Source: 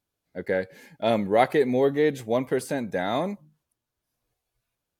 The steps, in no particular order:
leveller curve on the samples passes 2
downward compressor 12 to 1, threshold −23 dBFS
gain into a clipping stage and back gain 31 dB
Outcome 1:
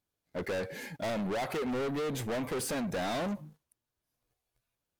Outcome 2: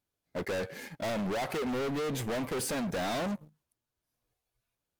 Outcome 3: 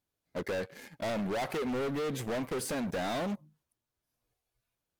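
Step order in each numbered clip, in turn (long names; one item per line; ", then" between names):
downward compressor, then gain into a clipping stage and back, then leveller curve on the samples
downward compressor, then leveller curve on the samples, then gain into a clipping stage and back
leveller curve on the samples, then downward compressor, then gain into a clipping stage and back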